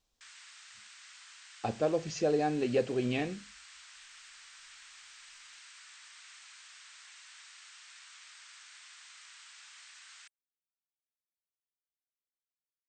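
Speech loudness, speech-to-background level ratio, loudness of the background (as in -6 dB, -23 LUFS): -32.0 LUFS, 19.0 dB, -51.0 LUFS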